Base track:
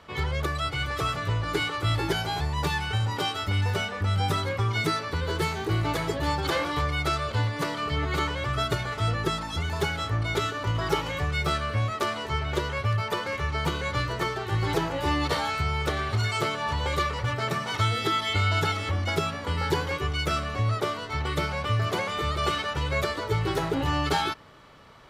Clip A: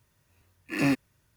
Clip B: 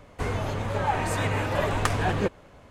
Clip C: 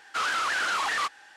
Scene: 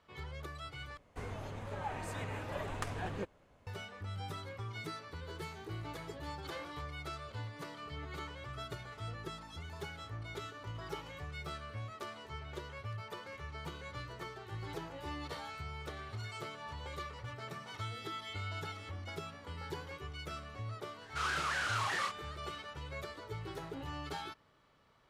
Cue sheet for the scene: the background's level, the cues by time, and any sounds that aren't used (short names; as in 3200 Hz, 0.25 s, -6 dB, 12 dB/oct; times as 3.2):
base track -17 dB
0.97 replace with B -14.5 dB
21.01 add C -9.5 dB + doubler 30 ms -4 dB
not used: A